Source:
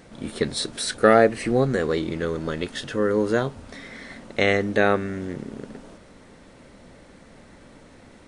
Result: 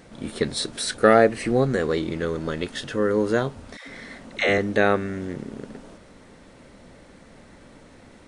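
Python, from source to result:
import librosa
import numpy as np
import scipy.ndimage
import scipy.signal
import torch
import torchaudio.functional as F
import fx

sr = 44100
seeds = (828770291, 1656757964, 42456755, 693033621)

y = fx.dispersion(x, sr, late='lows', ms=110.0, hz=500.0, at=(3.77, 4.58))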